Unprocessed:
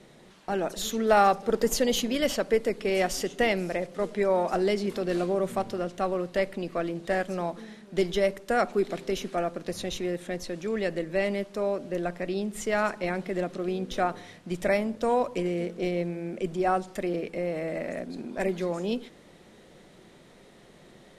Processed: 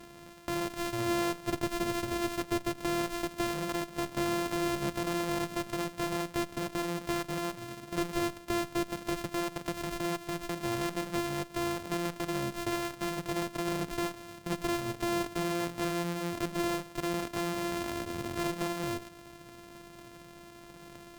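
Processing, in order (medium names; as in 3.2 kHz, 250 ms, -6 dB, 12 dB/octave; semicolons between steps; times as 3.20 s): sorted samples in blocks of 128 samples; compression 2:1, threshold -38 dBFS, peak gain reduction 12.5 dB; valve stage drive 31 dB, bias 0.7; trim +7 dB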